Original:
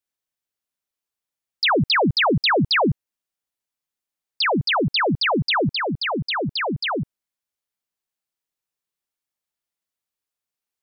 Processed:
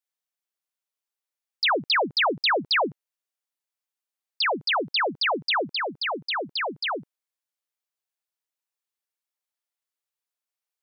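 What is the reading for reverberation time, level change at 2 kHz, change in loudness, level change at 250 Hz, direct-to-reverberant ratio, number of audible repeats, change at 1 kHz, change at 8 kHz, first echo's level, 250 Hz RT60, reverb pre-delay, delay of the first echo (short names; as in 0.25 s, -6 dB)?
none, -3.0 dB, -4.0 dB, -12.0 dB, none, none, -3.0 dB, n/a, none, none, none, none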